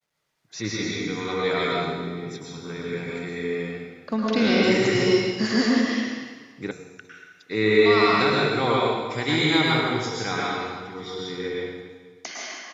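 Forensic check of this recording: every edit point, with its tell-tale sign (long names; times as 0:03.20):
0:06.71: cut off before it has died away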